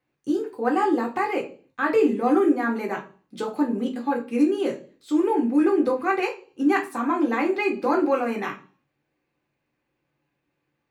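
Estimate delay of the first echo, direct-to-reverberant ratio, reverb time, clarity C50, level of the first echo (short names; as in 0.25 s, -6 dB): none, -1.0 dB, 0.40 s, 12.0 dB, none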